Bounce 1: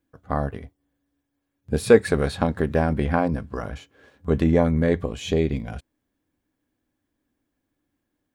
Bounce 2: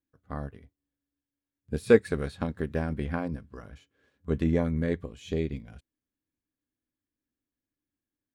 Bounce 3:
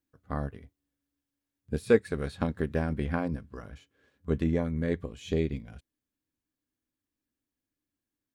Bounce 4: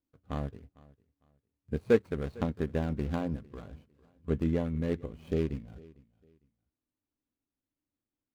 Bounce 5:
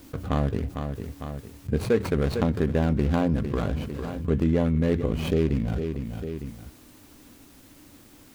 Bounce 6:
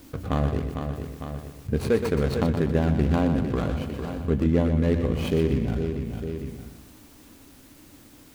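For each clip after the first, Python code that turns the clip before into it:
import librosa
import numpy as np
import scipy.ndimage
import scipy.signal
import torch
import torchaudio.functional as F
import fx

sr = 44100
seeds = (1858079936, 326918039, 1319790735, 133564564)

y1 = fx.peak_eq(x, sr, hz=760.0, db=-6.5, octaves=1.1)
y1 = fx.upward_expand(y1, sr, threshold_db=-34.0, expansion=1.5)
y1 = y1 * librosa.db_to_amplitude(-2.0)
y2 = fx.rider(y1, sr, range_db=5, speed_s=0.5)
y2 = y2 * librosa.db_to_amplitude(-2.0)
y3 = scipy.ndimage.median_filter(y2, 25, mode='constant')
y3 = fx.echo_feedback(y3, sr, ms=453, feedback_pct=26, wet_db=-23)
y3 = y3 * librosa.db_to_amplitude(-1.5)
y4 = fx.env_flatten(y3, sr, amount_pct=70)
y5 = fx.echo_feedback(y4, sr, ms=122, feedback_pct=46, wet_db=-8)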